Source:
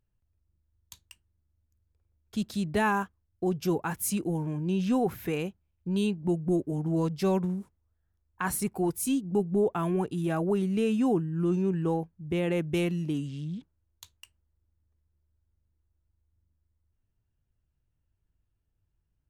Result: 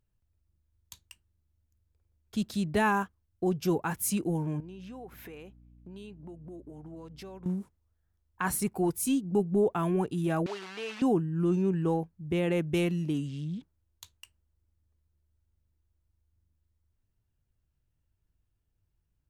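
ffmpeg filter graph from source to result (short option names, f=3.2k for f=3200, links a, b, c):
-filter_complex "[0:a]asettb=1/sr,asplit=3[a][b][c];[a]atrim=end=4.604[d];[b]atrim=start=4.6:end=7.46,asetpts=PTS-STARTPTS,afade=t=in:d=0.004:c=qsin,afade=t=out:st=2.856:d=0.004:c=qsin,bass=f=250:g=-8,treble=f=4k:g=-5,acompressor=threshold=-44dB:ratio=5:attack=3.2:release=140:knee=1:detection=peak,aeval=exprs='val(0)+0.00178*(sin(2*PI*60*n/s)+sin(2*PI*2*60*n/s)/2+sin(2*PI*3*60*n/s)/3+sin(2*PI*4*60*n/s)/4+sin(2*PI*5*60*n/s)/5)':c=same[e];[c]atrim=start=7.456[f];[d][e]acrossfade=d=0.004:c1=hsin:c2=qsin[g];[g][f]acrossfade=d=0.004:c1=qsin:c2=hsin,asettb=1/sr,asplit=3[h][i][j];[h]atrim=end=10.464[k];[i]atrim=start=10.46:end=11.02,asetpts=PTS-STARTPTS,afade=t=in:d=0.004:c=qsin,afade=t=out:st=0.556:d=0.004:c=qsin,acrusher=bits=7:dc=4:mix=0:aa=0.000001,highpass=760,lowpass=4.3k[l];[j]atrim=start=11.016[m];[k][l]acrossfade=d=0.004:c1=hsin:c2=qsin[n];[n][m]acrossfade=d=0.004:c1=qsin:c2=hsin"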